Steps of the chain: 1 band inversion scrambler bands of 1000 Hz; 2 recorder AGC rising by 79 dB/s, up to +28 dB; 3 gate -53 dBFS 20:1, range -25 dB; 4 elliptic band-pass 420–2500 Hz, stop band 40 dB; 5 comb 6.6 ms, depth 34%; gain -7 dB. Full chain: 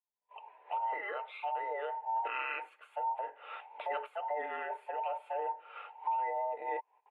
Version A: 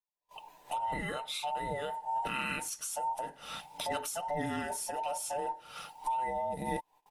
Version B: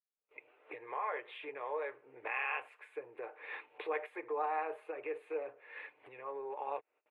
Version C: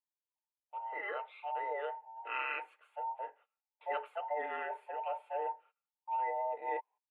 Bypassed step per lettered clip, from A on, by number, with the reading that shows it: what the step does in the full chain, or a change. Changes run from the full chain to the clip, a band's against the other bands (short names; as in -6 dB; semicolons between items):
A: 4, 250 Hz band +18.0 dB; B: 1, 1 kHz band -7.0 dB; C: 2, crest factor change +2.0 dB